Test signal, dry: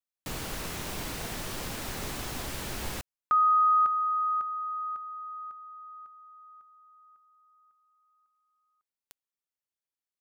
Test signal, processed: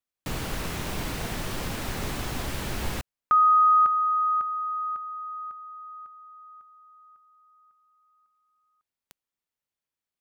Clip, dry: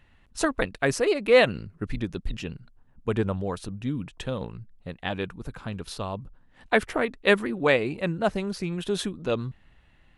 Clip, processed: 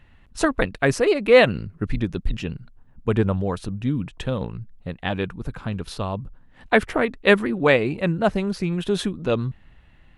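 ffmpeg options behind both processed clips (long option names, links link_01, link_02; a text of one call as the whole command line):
ffmpeg -i in.wav -af "bass=frequency=250:gain=3,treble=frequency=4000:gain=-4,volume=4dB" out.wav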